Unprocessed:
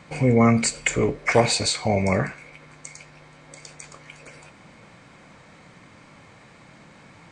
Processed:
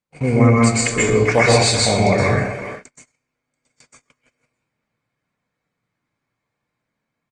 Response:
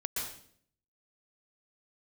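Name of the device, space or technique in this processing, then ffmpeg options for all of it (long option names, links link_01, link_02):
speakerphone in a meeting room: -filter_complex "[1:a]atrim=start_sample=2205[link_01];[0:a][link_01]afir=irnorm=-1:irlink=0,asplit=2[link_02][link_03];[link_03]adelay=390,highpass=300,lowpass=3400,asoftclip=type=hard:threshold=-11dB,volume=-12dB[link_04];[link_02][link_04]amix=inputs=2:normalize=0,dynaudnorm=framelen=240:gausssize=7:maxgain=5dB,agate=range=-38dB:threshold=-31dB:ratio=16:detection=peak,volume=1dB" -ar 48000 -c:a libopus -b:a 32k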